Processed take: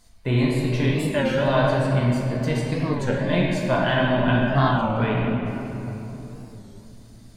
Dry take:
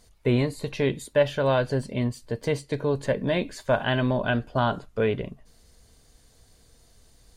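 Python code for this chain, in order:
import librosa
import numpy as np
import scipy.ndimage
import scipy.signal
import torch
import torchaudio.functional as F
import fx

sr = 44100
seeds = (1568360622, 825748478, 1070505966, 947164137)

y = fx.peak_eq(x, sr, hz=450.0, db=-9.5, octaves=0.55)
y = fx.room_shoebox(y, sr, seeds[0], volume_m3=200.0, walls='hard', distance_m=0.73)
y = fx.record_warp(y, sr, rpm=33.33, depth_cents=160.0)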